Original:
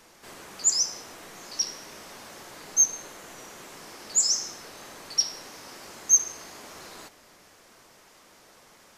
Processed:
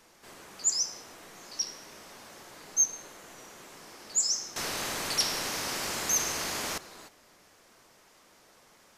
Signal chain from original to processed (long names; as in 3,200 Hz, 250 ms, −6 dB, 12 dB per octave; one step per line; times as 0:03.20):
0:04.56–0:06.78: every bin compressed towards the loudest bin 2 to 1
level −4.5 dB